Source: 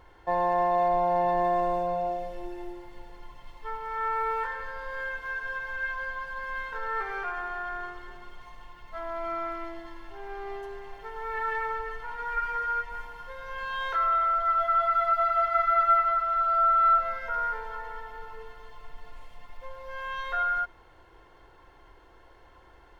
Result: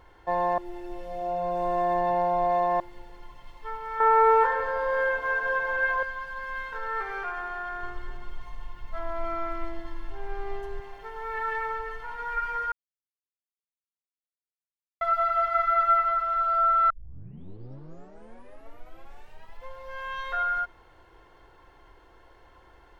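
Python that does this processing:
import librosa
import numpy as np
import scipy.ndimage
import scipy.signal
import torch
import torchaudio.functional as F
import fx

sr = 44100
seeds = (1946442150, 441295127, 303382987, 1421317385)

y = fx.peak_eq(x, sr, hz=560.0, db=14.5, octaves=2.5, at=(4.0, 6.03))
y = fx.low_shelf(y, sr, hz=140.0, db=12.0, at=(7.83, 10.8))
y = fx.edit(y, sr, fx.reverse_span(start_s=0.58, length_s=2.22),
    fx.silence(start_s=12.72, length_s=2.29),
    fx.tape_start(start_s=16.9, length_s=2.77), tone=tone)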